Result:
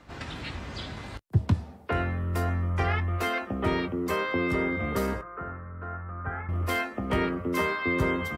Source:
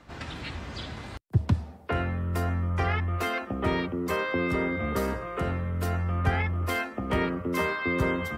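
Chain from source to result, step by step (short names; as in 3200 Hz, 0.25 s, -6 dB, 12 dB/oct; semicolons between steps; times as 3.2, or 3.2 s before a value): 5.21–6.49 ladder low-pass 1600 Hz, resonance 60%; doubler 20 ms -13 dB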